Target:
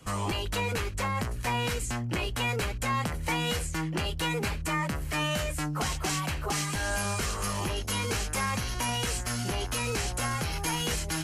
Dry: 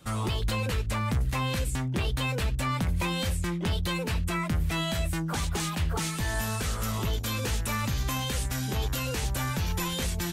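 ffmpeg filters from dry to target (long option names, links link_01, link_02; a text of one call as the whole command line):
ffmpeg -i in.wav -filter_complex "[0:a]bandreject=frequency=3900:width=9.5,acrossover=split=300[link_01][link_02];[link_01]alimiter=level_in=7dB:limit=-24dB:level=0:latency=1:release=275,volume=-7dB[link_03];[link_03][link_02]amix=inputs=2:normalize=0,asetrate=40517,aresample=44100,volume=2dB" out.wav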